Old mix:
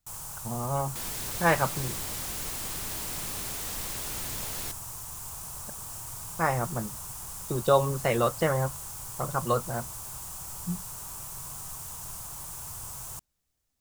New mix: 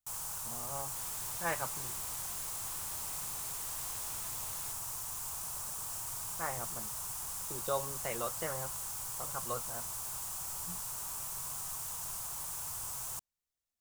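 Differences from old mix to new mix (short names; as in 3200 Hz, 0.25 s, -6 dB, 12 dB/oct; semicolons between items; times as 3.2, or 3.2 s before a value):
speech -10.5 dB; second sound -11.5 dB; master: add low shelf 380 Hz -8.5 dB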